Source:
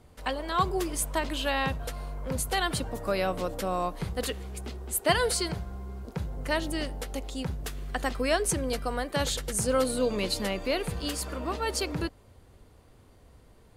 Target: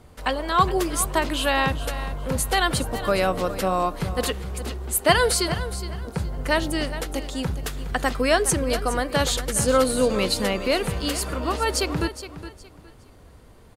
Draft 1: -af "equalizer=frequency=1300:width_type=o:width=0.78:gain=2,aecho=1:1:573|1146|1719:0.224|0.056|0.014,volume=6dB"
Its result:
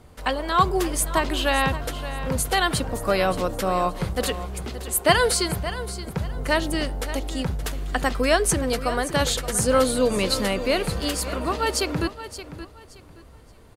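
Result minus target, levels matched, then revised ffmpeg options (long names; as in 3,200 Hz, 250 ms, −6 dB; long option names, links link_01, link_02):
echo 158 ms late
-af "equalizer=frequency=1300:width_type=o:width=0.78:gain=2,aecho=1:1:415|830|1245:0.224|0.056|0.014,volume=6dB"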